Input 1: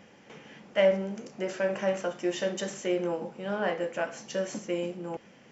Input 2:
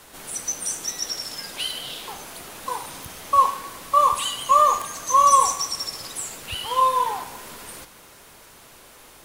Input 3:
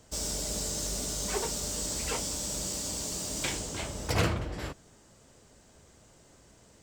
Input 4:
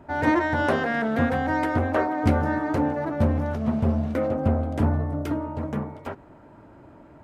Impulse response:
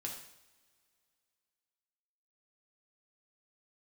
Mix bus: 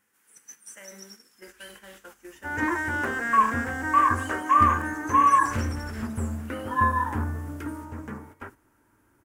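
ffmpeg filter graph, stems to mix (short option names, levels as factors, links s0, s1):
-filter_complex "[0:a]alimiter=limit=0.0841:level=0:latency=1:release=39,volume=0.282,asplit=2[s0][s1];[1:a]highpass=600,afwtdn=0.0631,highshelf=f=4600:g=5.5,volume=0.708[s2];[2:a]adelay=1350,volume=1.88,afade=t=in:st=2.44:d=0.58:silence=0.298538,afade=t=out:st=4.18:d=0.38:silence=0.354813,afade=t=in:st=5.38:d=0.2:silence=0.354813[s3];[3:a]adelay=2350,volume=0.596[s4];[s1]apad=whole_len=360694[s5];[s3][s5]sidechaincompress=threshold=0.00158:ratio=3:attack=46:release=784[s6];[s0][s2][s6][s4]amix=inputs=4:normalize=0,agate=range=0.355:threshold=0.00708:ratio=16:detection=peak,equalizer=f=160:t=o:w=0.67:g=-10,equalizer=f=630:t=o:w=0.67:g=-12,equalizer=f=1600:t=o:w=0.67:g=7,equalizer=f=4000:t=o:w=0.67:g=-9"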